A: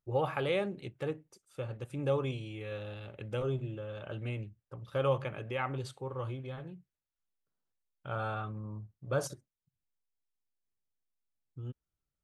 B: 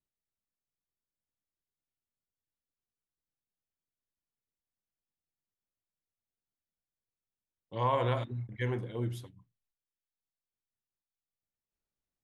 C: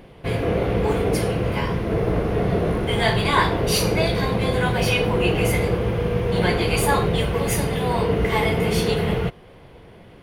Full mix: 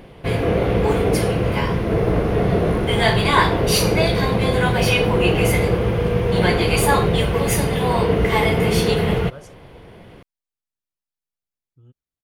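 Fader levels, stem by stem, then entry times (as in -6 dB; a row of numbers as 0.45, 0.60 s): -8.5, -3.0, +3.0 dB; 0.20, 0.00, 0.00 s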